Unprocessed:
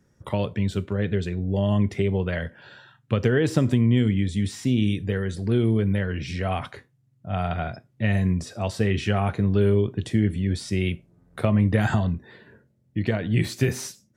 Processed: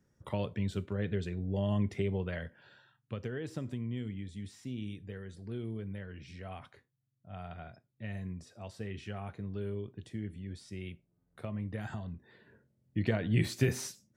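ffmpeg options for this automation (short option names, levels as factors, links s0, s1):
-af "volume=1.41,afade=t=out:st=2.02:d=1.27:silence=0.354813,afade=t=in:st=12.05:d=0.94:silence=0.251189"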